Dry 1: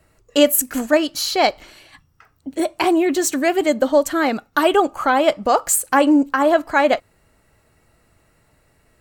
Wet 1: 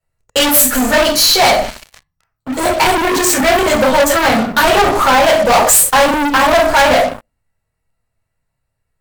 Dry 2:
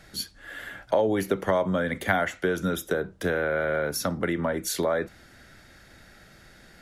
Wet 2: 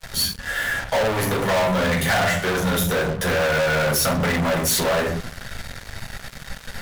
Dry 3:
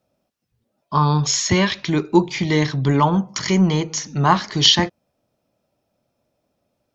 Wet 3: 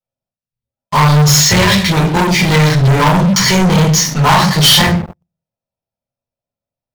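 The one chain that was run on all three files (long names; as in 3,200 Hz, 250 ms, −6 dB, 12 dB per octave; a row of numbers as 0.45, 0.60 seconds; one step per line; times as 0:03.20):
rectangular room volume 270 cubic metres, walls furnished, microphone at 4.4 metres
leveller curve on the samples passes 3
high-shelf EQ 6,400 Hz +4.5 dB
leveller curve on the samples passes 3
parametric band 320 Hz −13 dB 0.46 octaves
level −14 dB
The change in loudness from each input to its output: +7.0, +6.0, +8.5 LU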